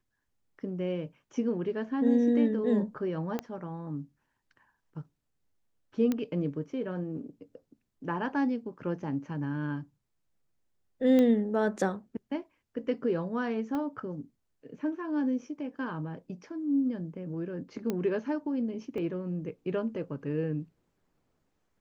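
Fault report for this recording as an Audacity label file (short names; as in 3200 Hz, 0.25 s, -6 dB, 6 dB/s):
3.390000	3.390000	pop -19 dBFS
6.120000	6.120000	pop -17 dBFS
11.190000	11.190000	pop -16 dBFS
13.750000	13.750000	pop -23 dBFS
17.900000	17.900000	pop -18 dBFS
18.980000	18.980000	gap 2.5 ms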